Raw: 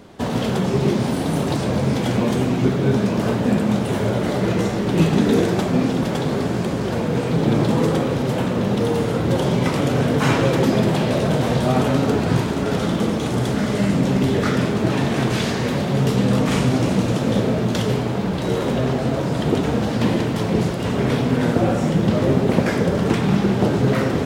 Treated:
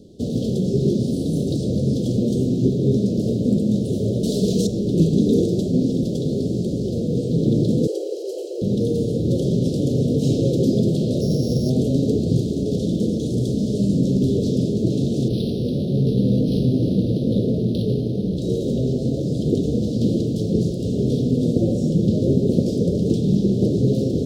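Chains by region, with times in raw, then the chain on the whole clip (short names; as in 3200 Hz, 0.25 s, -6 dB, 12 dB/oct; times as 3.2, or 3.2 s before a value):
4.23–4.67 high shelf 2200 Hz +11.5 dB + comb 4.6 ms, depth 46%
7.87–8.62 steep high-pass 340 Hz 96 dB/oct + notch 3600 Hz, Q 6.3
11.21–11.7 sample sorter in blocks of 8 samples + high shelf 6300 Hz -5.5 dB
15.28–18.37 high shelf 3400 Hz +7 dB + decimation joined by straight lines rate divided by 6×
whole clip: inverse Chebyshev band-stop 1000–2000 Hz, stop band 60 dB; high shelf 6800 Hz -9 dB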